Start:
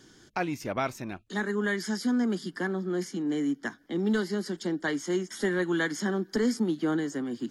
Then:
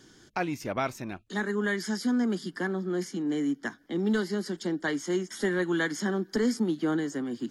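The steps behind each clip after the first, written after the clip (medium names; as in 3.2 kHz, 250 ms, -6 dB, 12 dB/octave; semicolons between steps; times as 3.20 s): no audible change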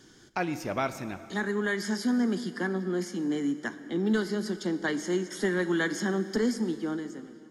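fade out at the end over 1.16 s; on a send at -11.5 dB: reverberation RT60 2.6 s, pre-delay 6 ms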